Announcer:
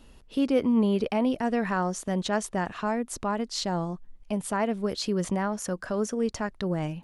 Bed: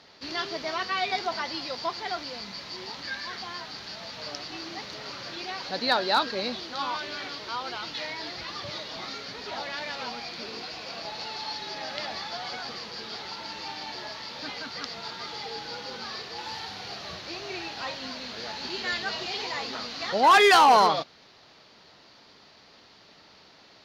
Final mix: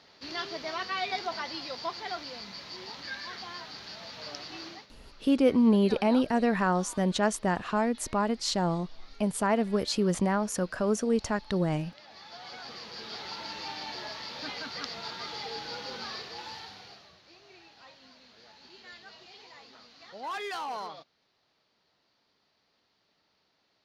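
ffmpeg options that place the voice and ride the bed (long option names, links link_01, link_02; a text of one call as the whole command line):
ffmpeg -i stem1.wav -i stem2.wav -filter_complex "[0:a]adelay=4900,volume=1dB[link_01];[1:a]volume=13.5dB,afade=type=out:start_time=4.66:duration=0.21:silence=0.177828,afade=type=in:start_time=12.04:duration=1.31:silence=0.133352,afade=type=out:start_time=16.04:duration=1.07:silence=0.133352[link_02];[link_01][link_02]amix=inputs=2:normalize=0" out.wav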